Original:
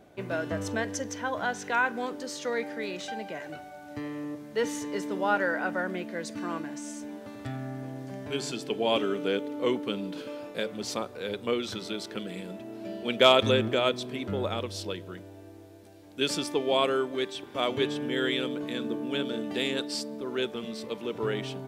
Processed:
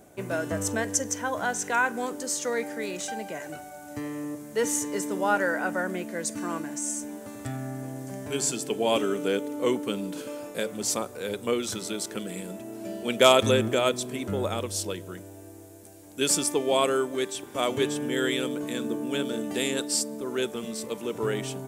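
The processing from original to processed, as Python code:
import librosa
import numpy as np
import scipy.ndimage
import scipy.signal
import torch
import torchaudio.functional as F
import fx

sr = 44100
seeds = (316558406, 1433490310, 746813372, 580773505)

y = fx.high_shelf_res(x, sr, hz=5700.0, db=11.0, q=1.5)
y = y * 10.0 ** (2.0 / 20.0)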